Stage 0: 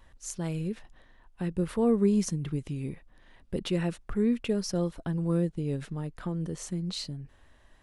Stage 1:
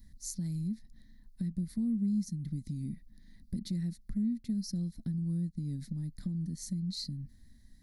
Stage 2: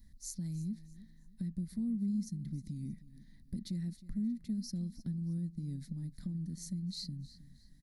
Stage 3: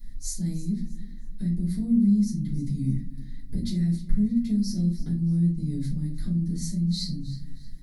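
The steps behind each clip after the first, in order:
EQ curve 140 Hz 0 dB, 220 Hz +8 dB, 440 Hz -24 dB, 640 Hz -24 dB, 1300 Hz -28 dB, 2000 Hz -9 dB, 2800 Hz -28 dB, 4200 Hz +2 dB, 8100 Hz -5 dB, 12000 Hz +6 dB; compressor 2.5:1, threshold -39 dBFS, peak gain reduction 15.5 dB; gain +2.5 dB
feedback echo 0.314 s, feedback 31%, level -17 dB; gain -3.5 dB
shoebox room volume 150 m³, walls furnished, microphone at 3.9 m; gain +3 dB

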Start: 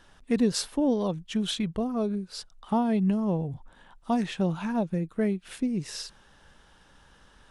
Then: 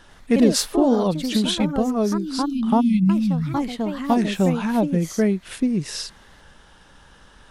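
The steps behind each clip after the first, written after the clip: spectral delete 2.8–4.09, 280–2000 Hz; echoes that change speed 97 ms, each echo +3 st, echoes 2, each echo -6 dB; gain +7 dB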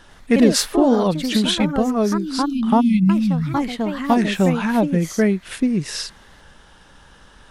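dynamic EQ 1800 Hz, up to +5 dB, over -41 dBFS, Q 1.1; gain +2 dB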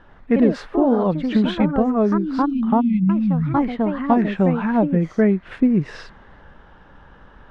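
LPF 1600 Hz 12 dB/oct; vocal rider within 3 dB 0.5 s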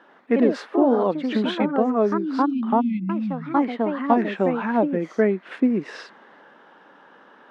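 HPF 250 Hz 24 dB/oct

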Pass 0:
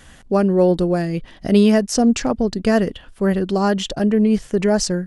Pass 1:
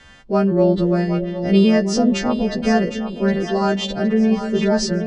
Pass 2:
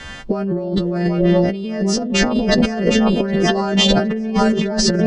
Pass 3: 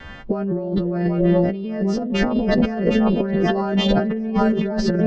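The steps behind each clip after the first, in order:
frequency quantiser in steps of 2 st; air absorption 180 m; split-band echo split 540 Hz, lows 0.292 s, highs 0.762 s, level -9.5 dB
negative-ratio compressor -25 dBFS, ratio -1; gain +7 dB
high shelf 3600 Hz -12 dB; vibrato 0.55 Hz 7.5 cents; air absorption 100 m; gain -2 dB

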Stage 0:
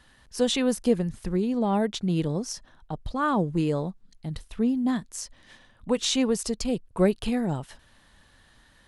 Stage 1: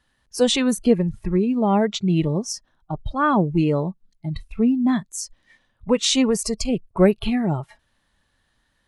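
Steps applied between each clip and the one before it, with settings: spectral noise reduction 16 dB; gain +6 dB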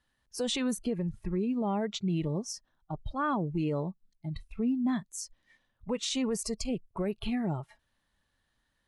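limiter -13.5 dBFS, peak gain reduction 10.5 dB; gain -9 dB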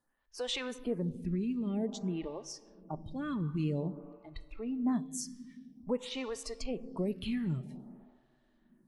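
on a send at -14 dB: reverb RT60 2.4 s, pre-delay 3 ms; on the sum: photocell phaser 0.51 Hz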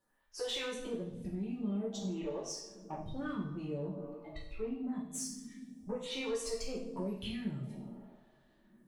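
compressor 6:1, threshold -37 dBFS, peak gain reduction 10.5 dB; soft clip -32.5 dBFS, distortion -21 dB; two-slope reverb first 0.56 s, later 2.2 s, from -27 dB, DRR -4.5 dB; gain -1.5 dB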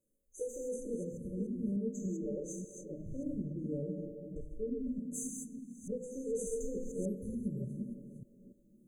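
reverse delay 0.294 s, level -5.5 dB; brick-wall FIR band-stop 600–6100 Hz

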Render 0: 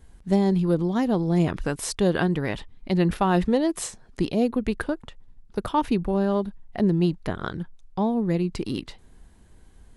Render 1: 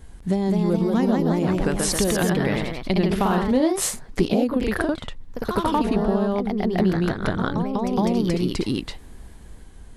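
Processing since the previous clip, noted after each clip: compressor, threshold -27 dBFS, peak gain reduction 11.5 dB; echoes that change speed 0.226 s, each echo +1 st, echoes 3; gain +7.5 dB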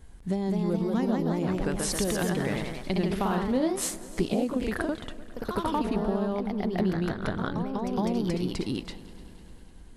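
multi-head echo 0.1 s, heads second and third, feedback 63%, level -20.5 dB; gain -6.5 dB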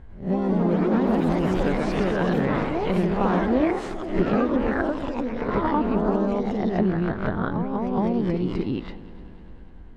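spectral swells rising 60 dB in 0.35 s; LPF 1900 Hz 12 dB/oct; echoes that change speed 0.103 s, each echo +5 st, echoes 3, each echo -6 dB; gain +3.5 dB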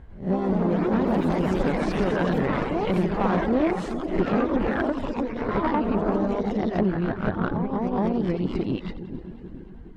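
split-band echo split 410 Hz, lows 0.421 s, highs 87 ms, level -9.5 dB; reverb removal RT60 0.57 s; tube stage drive 17 dB, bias 0.5; gain +2.5 dB

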